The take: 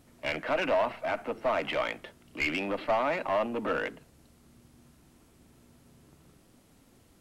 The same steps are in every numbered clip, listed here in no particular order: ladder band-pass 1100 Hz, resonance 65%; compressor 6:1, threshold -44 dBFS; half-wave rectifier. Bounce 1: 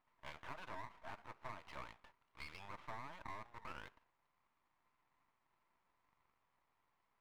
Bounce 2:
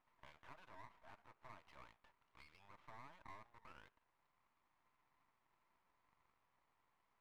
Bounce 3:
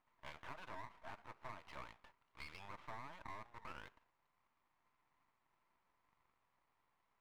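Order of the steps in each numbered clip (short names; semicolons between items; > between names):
ladder band-pass > half-wave rectifier > compressor; compressor > ladder band-pass > half-wave rectifier; ladder band-pass > compressor > half-wave rectifier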